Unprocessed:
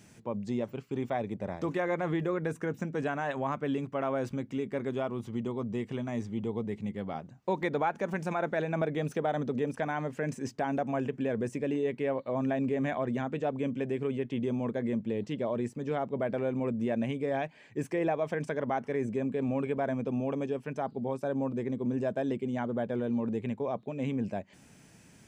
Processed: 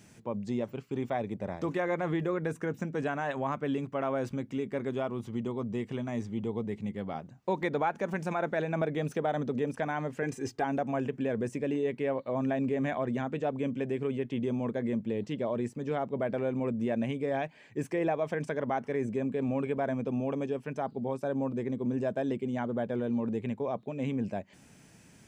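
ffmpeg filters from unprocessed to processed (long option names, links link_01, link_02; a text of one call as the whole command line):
ffmpeg -i in.wav -filter_complex "[0:a]asettb=1/sr,asplit=3[link_01][link_02][link_03];[link_01]atrim=end=10.224[link_04];[link_02]atrim=start=10.22:end=10.64,asetpts=PTS-STARTPTS,afade=type=in:duration=0.004:curve=qsin,afade=type=out:start_time=0.416:duration=0.004:curve=qsin,aecho=1:1:2.5:0.65,atrim=end_sample=18522[link_05];[link_03]atrim=start=10.636[link_06];[link_04][link_05]acrossfade=duration=0.004:curve1=hsin:curve2=qsin[link_07];[link_07][link_06]acrossfade=duration=0.004:curve1=qsin:curve2=hsin" out.wav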